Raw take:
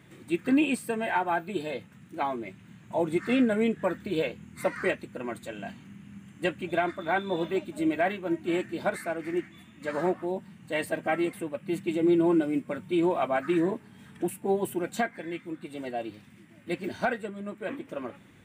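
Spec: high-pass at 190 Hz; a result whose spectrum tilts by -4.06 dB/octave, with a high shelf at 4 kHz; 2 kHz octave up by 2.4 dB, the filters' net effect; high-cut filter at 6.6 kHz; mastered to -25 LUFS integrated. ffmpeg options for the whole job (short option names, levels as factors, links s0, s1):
-af "highpass=190,lowpass=6600,equalizer=f=2000:t=o:g=5,highshelf=f=4000:g=-8,volume=1.78"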